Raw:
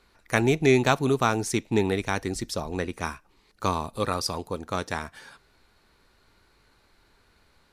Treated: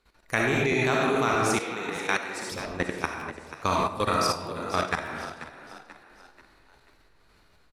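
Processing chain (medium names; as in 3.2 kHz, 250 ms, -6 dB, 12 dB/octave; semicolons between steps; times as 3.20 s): algorithmic reverb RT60 1.1 s, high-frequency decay 0.6×, pre-delay 20 ms, DRR -1.5 dB; dynamic bell 1.9 kHz, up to +6 dB, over -38 dBFS, Q 0.74; 1.59–2.52 s: high-pass 780 Hz 6 dB/octave; level held to a coarse grid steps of 12 dB; frequency-shifting echo 486 ms, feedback 43%, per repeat +58 Hz, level -13 dB; crackling interface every 0.62 s, samples 512, repeat, from 0.71 s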